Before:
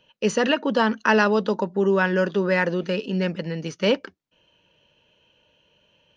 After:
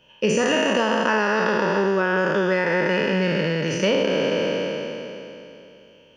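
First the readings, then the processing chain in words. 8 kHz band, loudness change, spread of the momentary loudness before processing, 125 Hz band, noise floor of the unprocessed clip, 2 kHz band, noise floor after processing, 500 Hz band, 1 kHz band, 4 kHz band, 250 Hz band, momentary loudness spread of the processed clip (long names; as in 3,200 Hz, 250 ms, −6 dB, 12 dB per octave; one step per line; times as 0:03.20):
can't be measured, +1.0 dB, 7 LU, +1.5 dB, −67 dBFS, +2.5 dB, −52 dBFS, +2.5 dB, +2.0 dB, +4.0 dB, +0.5 dB, 10 LU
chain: peak hold with a decay on every bin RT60 2.96 s
notch filter 4,000 Hz, Q 5.2
downward compressor, threshold −20 dBFS, peak gain reduction 10.5 dB
level +3 dB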